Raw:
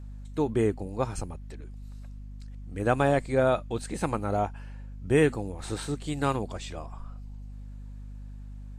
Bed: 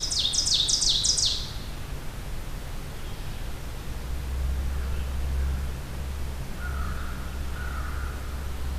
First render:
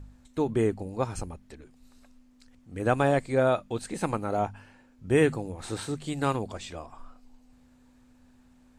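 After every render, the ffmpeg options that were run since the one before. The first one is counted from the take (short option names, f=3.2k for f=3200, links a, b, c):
-af "bandreject=f=50:t=h:w=4,bandreject=f=100:t=h:w=4,bandreject=f=150:t=h:w=4,bandreject=f=200:t=h:w=4"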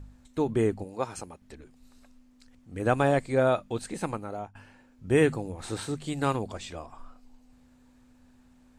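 -filter_complex "[0:a]asettb=1/sr,asplit=3[a][b][c];[a]atrim=end=0.844[d];[b]atrim=start=0.84:end=1.42,asetpts=PTS-STARTPTS,afade=t=in:d=0.004:c=qsin,afade=t=out:st=0.576:d=0.004:c=qsin,highpass=f=360:p=1[e];[c]atrim=start=1.416[f];[d][e]acrossfade=d=0.004:c1=hsin:c2=qsin[g];[g][f]acrossfade=d=0.004:c1=qsin:c2=hsin,asplit=2[h][i];[h]atrim=end=4.55,asetpts=PTS-STARTPTS,afade=t=out:st=3.83:d=0.72:silence=0.149624[j];[i]atrim=start=4.55,asetpts=PTS-STARTPTS,afade=t=in:d=0.004:c=hsin:silence=0.149624[k];[j][k]concat=n=2:v=0:a=1"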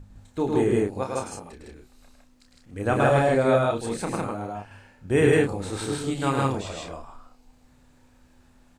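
-filter_complex "[0:a]asplit=2[a][b];[b]adelay=30,volume=-6dB[c];[a][c]amix=inputs=2:normalize=0,asplit=2[d][e];[e]aecho=0:1:105|157.4:0.631|1[f];[d][f]amix=inputs=2:normalize=0"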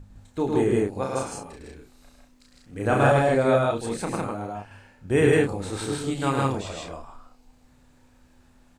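-filter_complex "[0:a]asettb=1/sr,asplit=3[a][b][c];[a]atrim=end=1.004[d];[b]atrim=start=1:end=3.12,asetpts=PTS-STARTPTS,afade=t=in:d=0.004:c=qsin,afade=t=out:st=2.116:d=0.004:c=qsin,asplit=2[e][f];[f]adelay=37,volume=-3dB[g];[e][g]amix=inputs=2:normalize=0,atrim=end_sample=93492[h];[c]atrim=start=3.116[i];[d][h]acrossfade=d=0.004:c1=hsin:c2=qsin[j];[j][i]acrossfade=d=0.004:c1=qsin:c2=hsin"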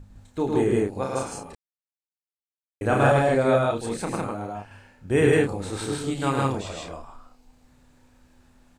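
-filter_complex "[0:a]asplit=3[a][b][c];[a]atrim=end=1.55,asetpts=PTS-STARTPTS,afade=t=out:st=1.546:d=0.004:c=hsin[d];[b]atrim=start=1.55:end=2.81,asetpts=PTS-STARTPTS,volume=0[e];[c]atrim=start=2.81,asetpts=PTS-STARTPTS,afade=t=in:d=0.004:c=hsin[f];[d][e][f]concat=n=3:v=0:a=1"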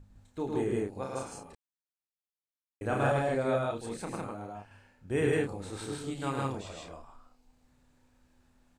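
-af "volume=-9dB"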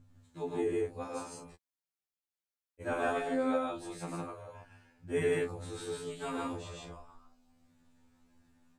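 -af "afftfilt=real='re*2*eq(mod(b,4),0)':imag='im*2*eq(mod(b,4),0)':win_size=2048:overlap=0.75"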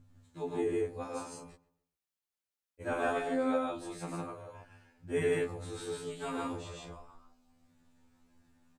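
-filter_complex "[0:a]asplit=2[a][b];[b]adelay=134,lowpass=f=2.5k:p=1,volume=-20.5dB,asplit=2[c][d];[d]adelay=134,lowpass=f=2.5k:p=1,volume=0.37,asplit=2[e][f];[f]adelay=134,lowpass=f=2.5k:p=1,volume=0.37[g];[a][c][e][g]amix=inputs=4:normalize=0"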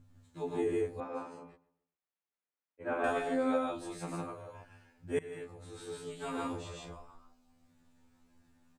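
-filter_complex "[0:a]asettb=1/sr,asplit=3[a][b][c];[a]atrim=end=1.004[d];[b]atrim=start=1:end=3.04,asetpts=PTS-STARTPTS,afade=t=in:d=0.004:c=qsin,afade=t=out:st=2.036:d=0.004:c=qsin,acrossover=split=160 2800:gain=0.251 1 0.0891[e][f][g];[e][f][g]amix=inputs=3:normalize=0[h];[c]atrim=start=3.036[i];[d][h]acrossfade=d=0.004:c1=hsin:c2=qsin[j];[j][i]acrossfade=d=0.004:c1=qsin:c2=hsin,asplit=2[k][l];[k]atrim=end=5.19,asetpts=PTS-STARTPTS,afade=t=out:st=5.186:d=0.004:c=hsin:silence=0.1[m];[l]atrim=start=5.19,asetpts=PTS-STARTPTS,afade=t=in:d=1.27:silence=0.1[n];[m][n]concat=n=2:v=0:a=1"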